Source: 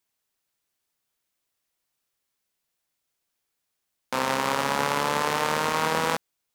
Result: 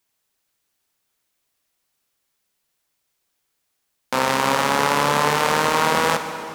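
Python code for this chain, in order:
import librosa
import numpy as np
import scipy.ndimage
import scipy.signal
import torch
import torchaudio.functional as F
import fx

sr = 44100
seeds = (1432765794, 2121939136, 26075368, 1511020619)

y = fx.rev_plate(x, sr, seeds[0], rt60_s=3.1, hf_ratio=0.75, predelay_ms=0, drr_db=7.5)
y = y * librosa.db_to_amplitude(5.5)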